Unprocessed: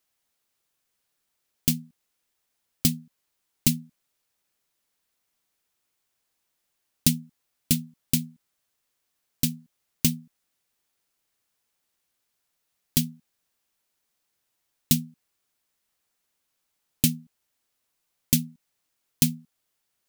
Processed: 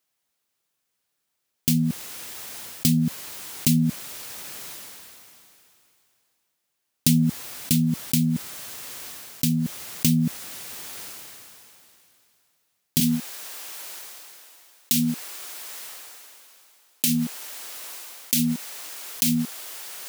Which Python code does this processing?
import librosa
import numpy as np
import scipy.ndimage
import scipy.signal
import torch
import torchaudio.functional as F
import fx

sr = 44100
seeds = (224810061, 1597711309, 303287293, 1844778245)

y = fx.highpass(x, sr, hz=fx.steps((0.0, 73.0), (13.0, 420.0)), slope=12)
y = fx.sustainer(y, sr, db_per_s=21.0)